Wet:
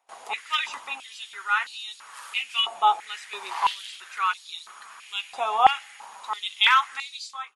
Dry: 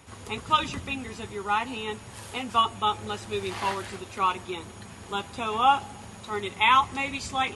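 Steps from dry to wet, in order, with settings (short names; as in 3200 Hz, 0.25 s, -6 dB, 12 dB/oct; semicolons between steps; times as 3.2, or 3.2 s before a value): ending faded out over 0.66 s; gate with hold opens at -36 dBFS; hard clip -12.5 dBFS, distortion -25 dB; stepped high-pass 3 Hz 740–4100 Hz; gain -1.5 dB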